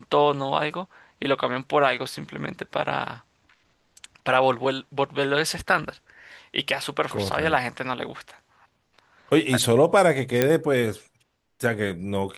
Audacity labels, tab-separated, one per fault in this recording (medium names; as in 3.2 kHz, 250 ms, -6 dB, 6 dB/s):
10.420000	10.420000	pop -5 dBFS